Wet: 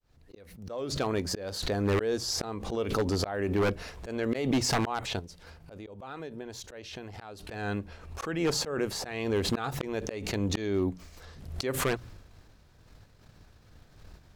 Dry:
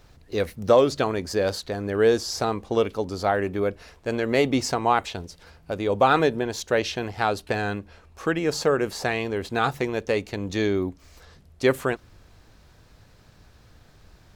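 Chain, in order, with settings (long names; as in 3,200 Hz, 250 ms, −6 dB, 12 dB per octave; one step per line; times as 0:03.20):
fade in at the beginning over 2.31 s
downward expander −43 dBFS
low-shelf EQ 290 Hz +3 dB
mains-hum notches 60/120/180 Hz
volume swells 683 ms
0:05.19–0:07.45: downward compressor 3 to 1, threshold −50 dBFS, peak gain reduction 19 dB
wave folding −25.5 dBFS
background raised ahead of every attack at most 62 dB per second
level +5.5 dB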